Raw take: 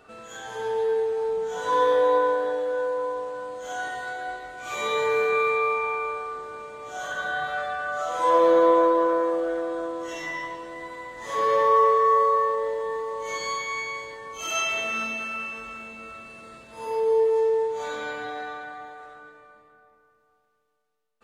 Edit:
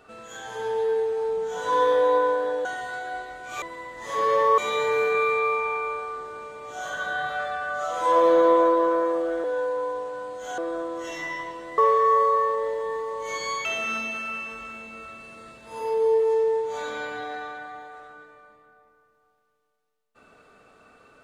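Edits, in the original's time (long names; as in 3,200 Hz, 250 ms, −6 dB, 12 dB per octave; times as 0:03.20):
0:02.65–0:03.79: move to 0:09.62
0:10.82–0:11.78: move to 0:04.76
0:13.65–0:14.71: remove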